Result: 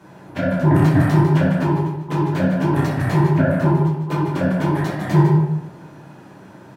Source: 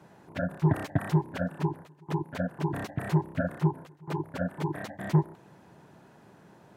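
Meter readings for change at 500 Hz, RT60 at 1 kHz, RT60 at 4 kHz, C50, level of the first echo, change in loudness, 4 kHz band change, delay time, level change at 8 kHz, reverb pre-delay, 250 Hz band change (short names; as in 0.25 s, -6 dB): +12.5 dB, 0.85 s, 0.60 s, 1.0 dB, -7.0 dB, +13.0 dB, +11.0 dB, 0.151 s, n/a, 7 ms, +13.5 dB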